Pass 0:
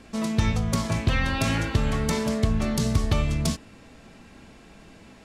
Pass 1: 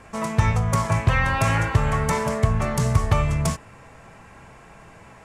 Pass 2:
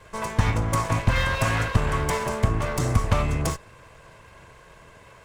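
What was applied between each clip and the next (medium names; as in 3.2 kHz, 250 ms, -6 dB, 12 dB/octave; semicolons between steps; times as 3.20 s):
graphic EQ 125/250/500/1000/2000/4000/8000 Hz +8/-8/+3/+9/+5/-8/+4 dB
comb filter that takes the minimum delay 1.9 ms; trim -1 dB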